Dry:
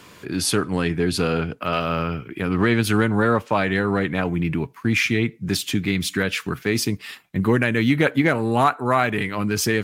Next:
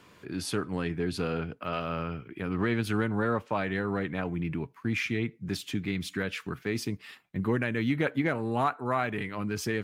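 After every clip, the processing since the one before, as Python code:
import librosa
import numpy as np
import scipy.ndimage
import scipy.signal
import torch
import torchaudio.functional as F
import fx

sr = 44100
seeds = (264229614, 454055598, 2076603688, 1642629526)

y = fx.high_shelf(x, sr, hz=4200.0, db=-7.0)
y = F.gain(torch.from_numpy(y), -9.0).numpy()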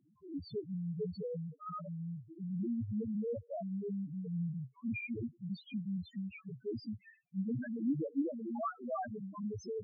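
y = fx.spec_topn(x, sr, count=1)
y = F.gain(torch.from_numpy(y), 1.0).numpy()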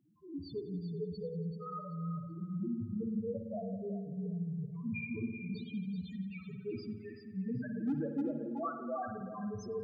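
y = np.clip(10.0 ** (28.0 / 20.0) * x, -1.0, 1.0) / 10.0 ** (28.0 / 20.0)
y = fx.echo_feedback(y, sr, ms=383, feedback_pct=21, wet_db=-9)
y = fx.rev_spring(y, sr, rt60_s=1.3, pass_ms=(54,), chirp_ms=40, drr_db=6.0)
y = F.gain(torch.from_numpy(y), -1.0).numpy()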